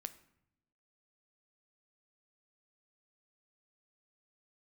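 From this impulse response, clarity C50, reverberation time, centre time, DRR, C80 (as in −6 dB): 15.5 dB, non-exponential decay, 5 ms, 11.0 dB, 18.5 dB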